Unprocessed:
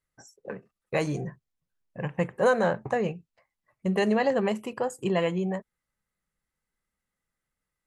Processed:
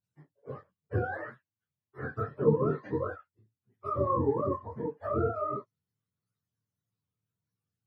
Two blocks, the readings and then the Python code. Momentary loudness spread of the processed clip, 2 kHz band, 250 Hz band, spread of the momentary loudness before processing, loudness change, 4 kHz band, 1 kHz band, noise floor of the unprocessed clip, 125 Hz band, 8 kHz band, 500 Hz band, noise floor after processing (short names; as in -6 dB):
18 LU, -10.0 dB, -6.0 dB, 18 LU, -4.0 dB, under -25 dB, -2.5 dB, under -85 dBFS, -1.0 dB, under -30 dB, -4.0 dB, under -85 dBFS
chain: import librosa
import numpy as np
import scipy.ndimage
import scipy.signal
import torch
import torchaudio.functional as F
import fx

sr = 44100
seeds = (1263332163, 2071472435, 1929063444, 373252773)

y = fx.octave_mirror(x, sr, pivot_hz=480.0)
y = fx.detune_double(y, sr, cents=55)
y = F.gain(torch.from_numpy(y), 1.0).numpy()